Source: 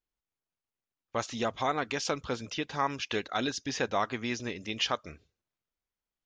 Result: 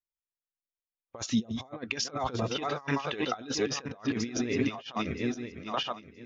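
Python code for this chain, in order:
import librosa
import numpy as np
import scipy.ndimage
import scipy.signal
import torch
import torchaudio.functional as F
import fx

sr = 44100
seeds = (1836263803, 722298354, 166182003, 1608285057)

y = fx.reverse_delay_fb(x, sr, ms=486, feedback_pct=53, wet_db=-7.0)
y = fx.low_shelf(y, sr, hz=400.0, db=-4.0, at=(2.54, 3.28))
y = fx.comb(y, sr, ms=7.5, depth=0.53, at=(4.5, 4.91))
y = fx.over_compress(y, sr, threshold_db=-36.0, ratio=-0.5)
y = fx.peak_eq(y, sr, hz=1600.0, db=fx.line((1.38, -10.5), (2.0, 1.5)), octaves=2.2, at=(1.38, 2.0), fade=0.02)
y = fx.spectral_expand(y, sr, expansion=1.5)
y = y * 10.0 ** (1.0 / 20.0)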